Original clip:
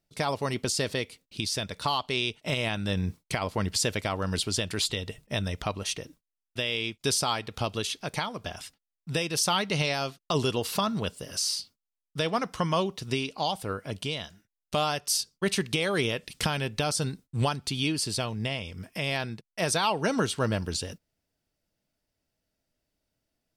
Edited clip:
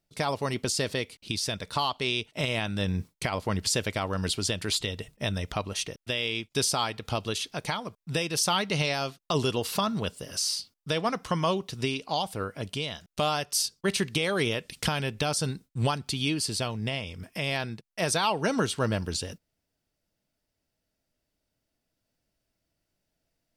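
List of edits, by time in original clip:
shorten pauses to 0.24 s

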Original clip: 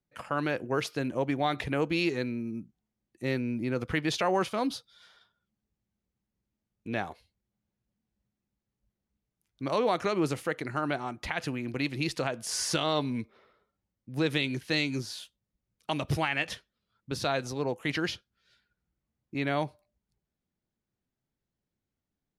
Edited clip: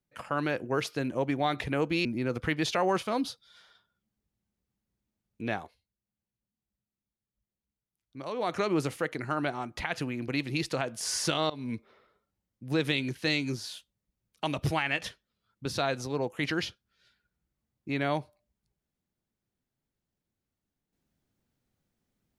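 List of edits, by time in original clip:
2.05–3.51 s: delete
6.99–10.03 s: dip -8.5 dB, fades 0.22 s
12.96–13.21 s: fade in, from -22 dB

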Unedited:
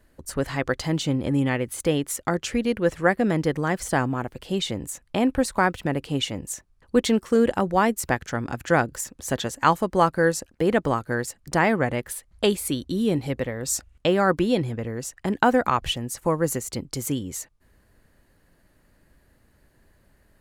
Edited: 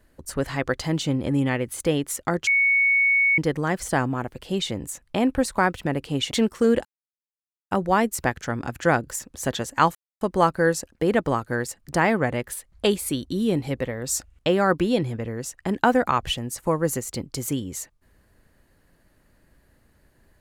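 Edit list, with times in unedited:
2.47–3.38 s: bleep 2.22 kHz -16 dBFS
6.31–7.02 s: delete
7.56 s: insert silence 0.86 s
9.80 s: insert silence 0.26 s

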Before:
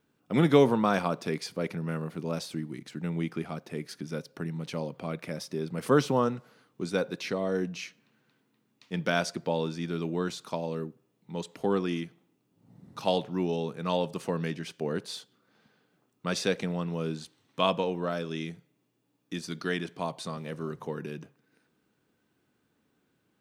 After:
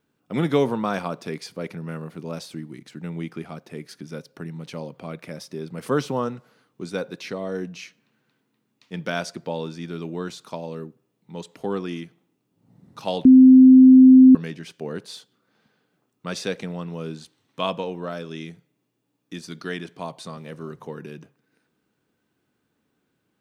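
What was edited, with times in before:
13.25–14.35 s: bleep 259 Hz -6 dBFS

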